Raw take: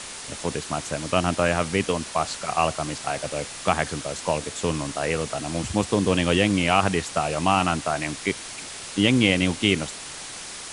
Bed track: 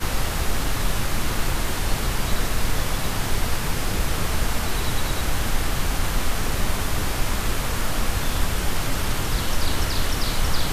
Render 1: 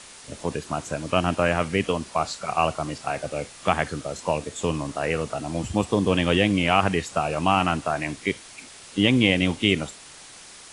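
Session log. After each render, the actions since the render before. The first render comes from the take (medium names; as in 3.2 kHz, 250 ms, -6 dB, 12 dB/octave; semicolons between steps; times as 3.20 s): noise print and reduce 8 dB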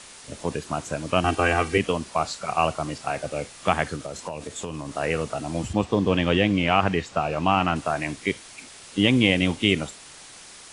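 1.24–1.78 s: comb 2.6 ms, depth 94%; 3.95–4.95 s: compression 5:1, threshold -28 dBFS; 5.73–7.76 s: distance through air 86 m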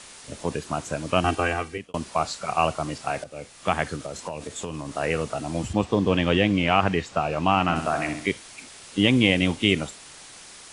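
1.26–1.94 s: fade out linear; 3.24–4.11 s: fade in equal-power, from -14 dB; 7.63–8.28 s: flutter echo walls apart 10.7 m, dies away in 0.55 s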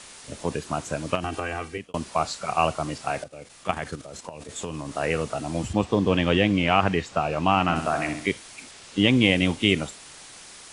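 1.15–1.80 s: compression, threshold -24 dBFS; 3.27–4.49 s: level held to a coarse grid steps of 10 dB; 8.71–9.22 s: low-pass 8.2 kHz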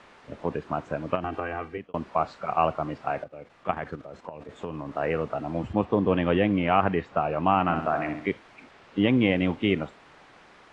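low-pass 1.7 kHz 12 dB/octave; bass shelf 130 Hz -7 dB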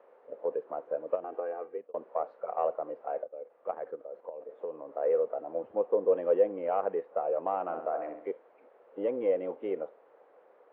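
in parallel at -4.5 dB: one-sided clip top -27.5 dBFS; on the sum: ladder band-pass 540 Hz, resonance 70%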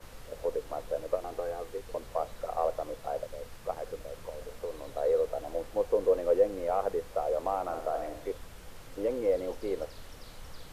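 add bed track -25 dB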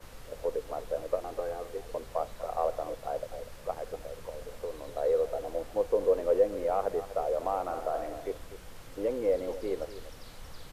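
delay 245 ms -13.5 dB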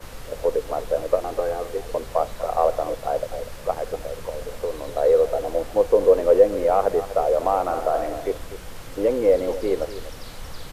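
trim +10 dB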